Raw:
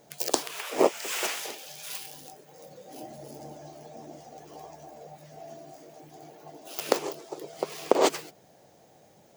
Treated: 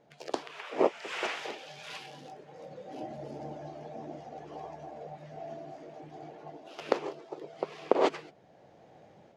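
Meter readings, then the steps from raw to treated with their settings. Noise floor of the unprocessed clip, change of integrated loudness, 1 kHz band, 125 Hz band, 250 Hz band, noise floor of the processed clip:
-58 dBFS, -7.0 dB, -2.5 dB, +1.0 dB, -3.0 dB, -59 dBFS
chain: AGC gain up to 8 dB; LPF 2900 Hz 12 dB/oct; gain -5.5 dB

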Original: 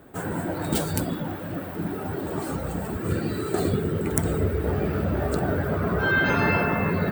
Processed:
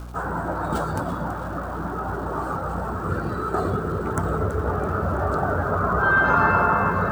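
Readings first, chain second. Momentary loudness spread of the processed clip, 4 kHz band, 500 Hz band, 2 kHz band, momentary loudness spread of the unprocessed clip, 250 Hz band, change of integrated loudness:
11 LU, -8.0 dB, +1.0 dB, +3.5 dB, 9 LU, -2.0 dB, +2.0 dB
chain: hum 60 Hz, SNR 12 dB; EQ curve 300 Hz 0 dB, 1300 Hz +14 dB, 2100 Hz -9 dB, 6300 Hz -9 dB, 16000 Hz -19 dB; crackle 580/s -42 dBFS; reverse; upward compressor, threshold -23 dBFS; reverse; bell 450 Hz -4.5 dB 2.8 oct; echo with dull and thin repeats by turns 0.165 s, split 1000 Hz, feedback 74%, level -10 dB

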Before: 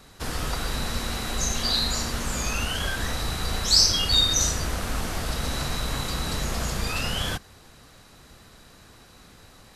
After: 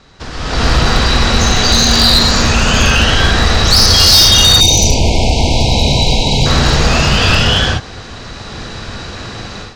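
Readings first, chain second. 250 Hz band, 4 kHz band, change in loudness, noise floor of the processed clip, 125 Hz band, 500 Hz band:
+17.5 dB, +15.5 dB, +15.5 dB, -30 dBFS, +18.0 dB, +17.5 dB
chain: in parallel at +1.5 dB: compressor 12:1, threshold -31 dBFS, peak gain reduction 18 dB; on the sum: LPF 6100 Hz 24 dB/oct; non-linear reverb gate 0.44 s rising, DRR -5 dB; overloaded stage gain 11.5 dB; AGC gain up to 13.5 dB; spectral delete 4.6–6.46, 1000–2100 Hz; gain -1.5 dB

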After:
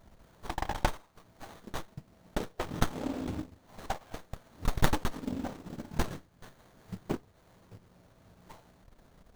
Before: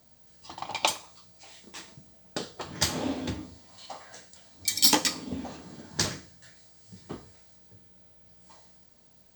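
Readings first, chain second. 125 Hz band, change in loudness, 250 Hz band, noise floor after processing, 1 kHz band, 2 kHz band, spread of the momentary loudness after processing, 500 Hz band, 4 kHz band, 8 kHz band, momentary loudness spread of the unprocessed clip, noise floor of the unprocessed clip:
+4.0 dB, -9.0 dB, -1.0 dB, -63 dBFS, -2.0 dB, -4.0 dB, 23 LU, -0.5 dB, -15.0 dB, -16.5 dB, 24 LU, -58 dBFS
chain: bell 7800 Hz +5.5 dB 0.56 oct; in parallel at -2 dB: negative-ratio compressor -37 dBFS, ratio -0.5; on the sum: transient shaper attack +8 dB, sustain -12 dB; added harmonics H 4 -16 dB, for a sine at 4.5 dBFS; running maximum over 17 samples; gain -6 dB

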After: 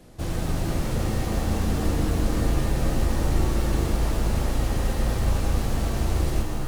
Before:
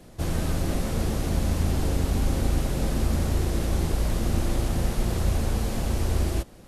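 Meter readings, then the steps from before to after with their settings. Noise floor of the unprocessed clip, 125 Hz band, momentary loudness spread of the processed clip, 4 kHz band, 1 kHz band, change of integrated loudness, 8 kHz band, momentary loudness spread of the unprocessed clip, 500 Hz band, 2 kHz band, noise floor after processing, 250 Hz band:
-47 dBFS, +0.5 dB, 3 LU, +0.5 dB, +3.0 dB, +1.0 dB, -0.5 dB, 2 LU, +1.5 dB, +2.0 dB, -28 dBFS, +1.0 dB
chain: self-modulated delay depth 0.18 ms; shimmer reverb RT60 2.9 s, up +7 st, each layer -2 dB, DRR 4.5 dB; gain -1.5 dB

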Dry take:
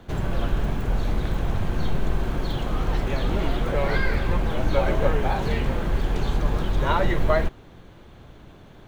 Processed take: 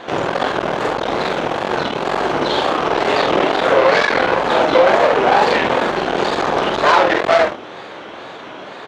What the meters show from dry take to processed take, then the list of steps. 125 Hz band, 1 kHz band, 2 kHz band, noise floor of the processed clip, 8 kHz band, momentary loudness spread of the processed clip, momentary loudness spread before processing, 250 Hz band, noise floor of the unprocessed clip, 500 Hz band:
-7.0 dB, +15.0 dB, +13.5 dB, -34 dBFS, n/a, 20 LU, 5 LU, +6.5 dB, -47 dBFS, +13.0 dB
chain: tube stage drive 25 dB, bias 0.5; dynamic EQ 2000 Hz, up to -4 dB, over -49 dBFS, Q 0.76; HPF 500 Hz 12 dB/oct; air absorption 110 m; early reflections 45 ms -4 dB, 70 ms -8 dB; wow and flutter 130 cents; maximiser +23.5 dB; gain -1 dB

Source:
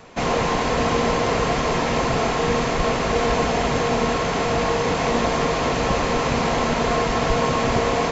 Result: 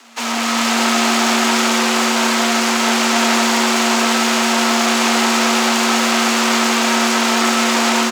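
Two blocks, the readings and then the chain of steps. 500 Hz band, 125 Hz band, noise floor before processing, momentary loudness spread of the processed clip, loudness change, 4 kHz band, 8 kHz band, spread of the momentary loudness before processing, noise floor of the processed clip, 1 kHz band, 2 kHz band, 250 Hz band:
-1.0 dB, under -10 dB, -23 dBFS, 1 LU, +6.5 dB, +12.0 dB, n/a, 1 LU, -19 dBFS, +5.0 dB, +9.0 dB, +8.0 dB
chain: HPF 330 Hz; tilt +3 dB/oct; AGC gain up to 9.5 dB; in parallel at -1 dB: limiter -13 dBFS, peak gain reduction 10.5 dB; on the sum: half-wave rectifier; frequency shift +230 Hz; on a send: frequency-shifting echo 0.469 s, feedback 46%, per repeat +140 Hz, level -8 dB; on the sum: gain -1 dB

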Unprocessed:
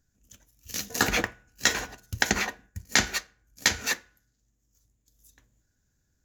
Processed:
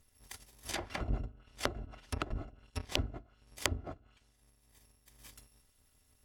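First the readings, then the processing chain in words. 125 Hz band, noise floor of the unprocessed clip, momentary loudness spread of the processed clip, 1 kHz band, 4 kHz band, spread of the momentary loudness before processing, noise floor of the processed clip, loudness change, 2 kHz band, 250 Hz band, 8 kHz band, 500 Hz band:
-1.5 dB, -75 dBFS, 19 LU, -10.5 dB, -12.5 dB, 11 LU, -71 dBFS, -13.0 dB, -17.0 dB, -8.5 dB, -17.0 dB, -7.0 dB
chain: FFT order left unsorted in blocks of 256 samples; treble ducked by the level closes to 350 Hz, closed at -26.5 dBFS; gain +5.5 dB

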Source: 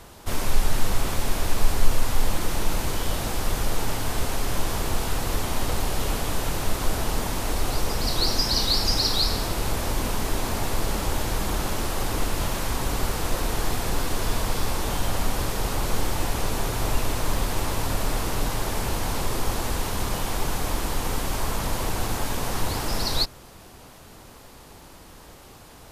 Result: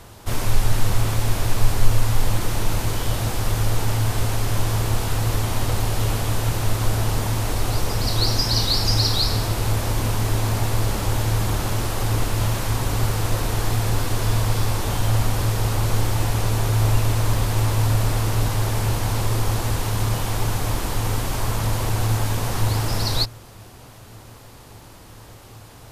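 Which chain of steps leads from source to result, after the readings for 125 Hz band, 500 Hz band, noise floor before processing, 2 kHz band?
+10.5 dB, +1.5 dB, -47 dBFS, +1.5 dB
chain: bell 110 Hz +15 dB 0.24 oct; gain +1.5 dB

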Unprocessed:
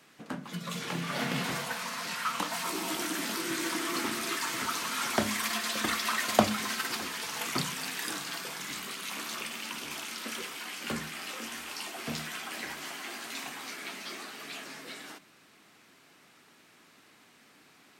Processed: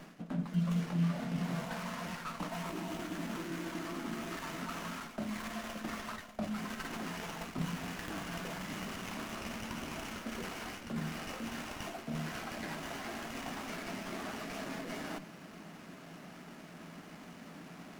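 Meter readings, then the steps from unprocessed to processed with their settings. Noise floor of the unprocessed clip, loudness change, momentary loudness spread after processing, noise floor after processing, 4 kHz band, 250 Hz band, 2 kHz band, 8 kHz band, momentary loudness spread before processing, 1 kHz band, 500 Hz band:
-60 dBFS, -6.5 dB, 14 LU, -52 dBFS, -11.5 dB, 0.0 dB, -8.5 dB, -13.0 dB, 10 LU, -7.0 dB, -5.5 dB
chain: small resonant body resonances 220/630/2900 Hz, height 8 dB, ringing for 20 ms; reverse; compressor 16:1, threshold -43 dBFS, peak gain reduction 33.5 dB; reverse; bell 170 Hz +13 dB 0.21 oct; running maximum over 9 samples; gain +6.5 dB

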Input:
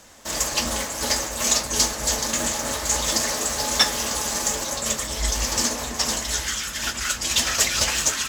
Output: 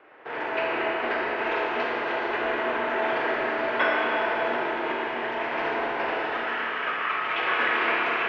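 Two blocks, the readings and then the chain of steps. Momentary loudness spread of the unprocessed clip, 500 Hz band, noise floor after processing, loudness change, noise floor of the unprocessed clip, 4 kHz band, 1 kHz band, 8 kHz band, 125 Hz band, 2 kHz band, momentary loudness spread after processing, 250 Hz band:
6 LU, +4.5 dB, -31 dBFS, -4.0 dB, -33 dBFS, -12.5 dB, +4.5 dB, under -40 dB, -16.0 dB, +4.0 dB, 5 LU, -1.5 dB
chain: mistuned SSB -190 Hz 540–2600 Hz; Schroeder reverb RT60 3.4 s, combs from 26 ms, DRR -4 dB

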